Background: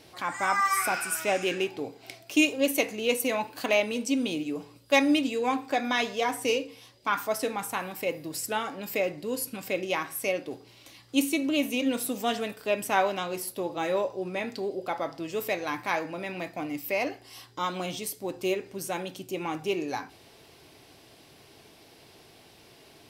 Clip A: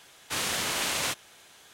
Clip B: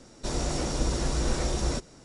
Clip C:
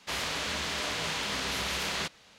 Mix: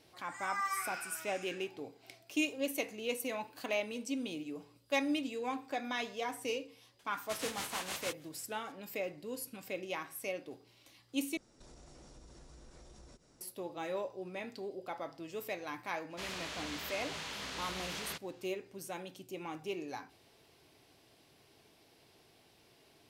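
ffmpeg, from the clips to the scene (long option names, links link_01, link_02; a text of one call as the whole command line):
ffmpeg -i bed.wav -i cue0.wav -i cue1.wav -i cue2.wav -filter_complex "[0:a]volume=-10.5dB[link_01];[1:a]tremolo=f=6.4:d=0.74[link_02];[2:a]acompressor=threshold=-40dB:ratio=6:attack=3.2:release=140:knee=1:detection=peak[link_03];[link_01]asplit=2[link_04][link_05];[link_04]atrim=end=11.374[link_06];[link_03]atrim=end=2.04,asetpts=PTS-STARTPTS,volume=-13.5dB[link_07];[link_05]atrim=start=13.406[link_08];[link_02]atrim=end=1.73,asetpts=PTS-STARTPTS,volume=-9dB,afade=type=in:duration=0.004:curve=hsin,afade=type=out:start_time=1.726:duration=0.004:curve=hsin,adelay=6990[link_09];[3:a]atrim=end=2.38,asetpts=PTS-STARTPTS,volume=-10dB,afade=type=in:duration=0.004:curve=hsin,afade=type=out:start_time=2.376:duration=0.004:curve=hsin,adelay=16100[link_10];[link_06][link_07]acrossfade=duration=0.004:curve1=hsin:curve2=hsin[link_11];[link_11][link_08]acrossfade=duration=0.004:curve1=hsin:curve2=hsin[link_12];[link_12][link_09][link_10]amix=inputs=3:normalize=0" out.wav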